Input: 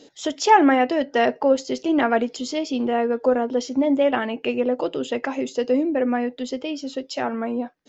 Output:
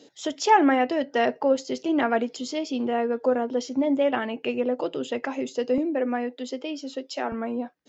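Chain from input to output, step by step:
high-pass filter 69 Hz 24 dB per octave, from 0:05.78 230 Hz, from 0:07.32 53 Hz
level −3.5 dB

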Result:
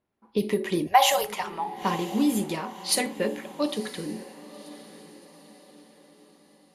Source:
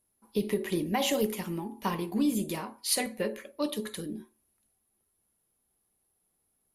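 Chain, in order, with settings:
0:00.87–0:01.76: drawn EQ curve 110 Hz 0 dB, 230 Hz −30 dB, 760 Hz +11 dB, 2,300 Hz +3 dB
low-pass that shuts in the quiet parts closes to 2,500 Hz, open at −23 dBFS
low-shelf EQ 69 Hz −12 dB
feedback delay with all-pass diffusion 998 ms, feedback 43%, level −16 dB
level +4.5 dB

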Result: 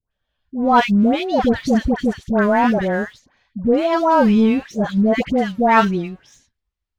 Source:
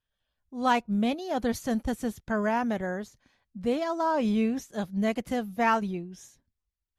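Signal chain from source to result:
low-pass filter 4,300 Hz 12 dB per octave
leveller curve on the samples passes 1
all-pass dispersion highs, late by 116 ms, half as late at 1,100 Hz
level +8.5 dB

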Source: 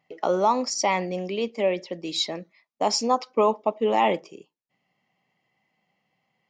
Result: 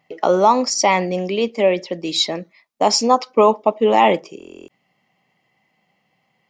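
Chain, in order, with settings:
buffer that repeats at 0:04.38, samples 1,024, times 12
level +7.5 dB

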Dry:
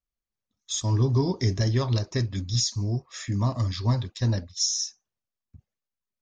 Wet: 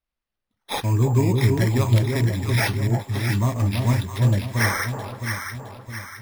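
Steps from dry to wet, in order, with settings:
decimation without filtering 6×
delay that swaps between a low-pass and a high-pass 332 ms, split 900 Hz, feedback 68%, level −3 dB
level +3 dB

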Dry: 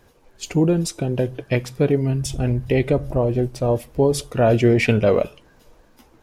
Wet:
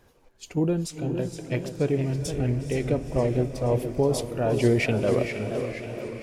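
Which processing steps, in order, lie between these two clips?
sample-and-hold tremolo
feedback delay with all-pass diffusion 471 ms, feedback 54%, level −10 dB
feedback echo with a swinging delay time 471 ms, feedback 53%, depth 174 cents, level −9.5 dB
level −4 dB

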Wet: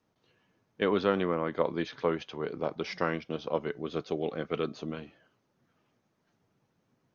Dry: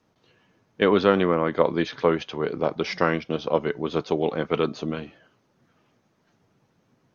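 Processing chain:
0:03.72–0:04.74: parametric band 920 Hz −11 dB 0.21 octaves
level −8 dB

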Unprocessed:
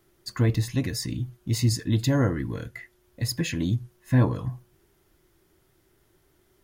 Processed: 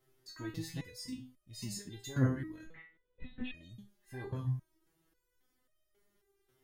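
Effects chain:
0:02.64–0:03.54: linear-prediction vocoder at 8 kHz whisper
step-sequenced resonator 3.7 Hz 130–620 Hz
level +1.5 dB

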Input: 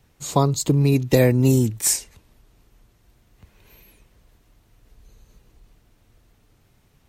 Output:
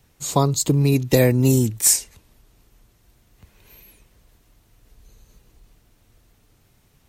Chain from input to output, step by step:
high-shelf EQ 4,700 Hz +5.5 dB

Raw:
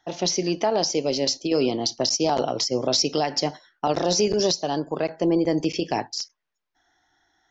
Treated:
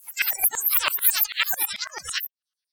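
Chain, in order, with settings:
peak hold with a rise ahead of every peak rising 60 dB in 1.21 s
noise reduction from a noise print of the clip's start 27 dB
auto-filter high-pass saw down 3.3 Hz 810–3,700 Hz
change of speed 2.75×
ring modulator whose carrier an LFO sweeps 530 Hz, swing 55%, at 2.4 Hz
level +5.5 dB

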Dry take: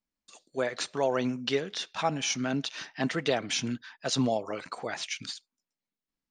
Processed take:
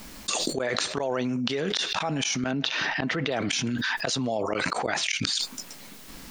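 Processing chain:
gate with flip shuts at −23 dBFS, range −26 dB
0:02.51–0:03.32: high-frequency loss of the air 160 metres
envelope flattener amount 100%
level +7 dB

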